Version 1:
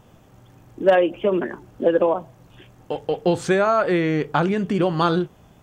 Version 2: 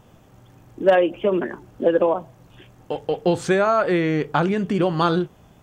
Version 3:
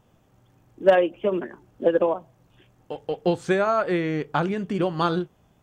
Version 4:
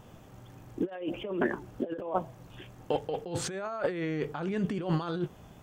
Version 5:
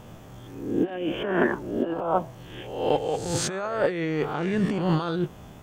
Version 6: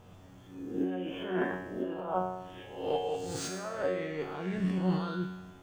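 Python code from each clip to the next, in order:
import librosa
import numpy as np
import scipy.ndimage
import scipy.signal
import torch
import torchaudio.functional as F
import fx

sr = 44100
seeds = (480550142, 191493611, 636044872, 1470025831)

y1 = x
y2 = fx.upward_expand(y1, sr, threshold_db=-30.0, expansion=1.5)
y3 = fx.over_compress(y2, sr, threshold_db=-33.0, ratio=-1.0)
y4 = fx.spec_swells(y3, sr, rise_s=0.74)
y4 = F.gain(torch.from_numpy(y4), 4.5).numpy()
y5 = scipy.signal.medfilt(y4, 3)
y5 = fx.comb_fb(y5, sr, f0_hz=92.0, decay_s=0.98, harmonics='all', damping=0.0, mix_pct=90)
y5 = F.gain(torch.from_numpy(y5), 4.5).numpy()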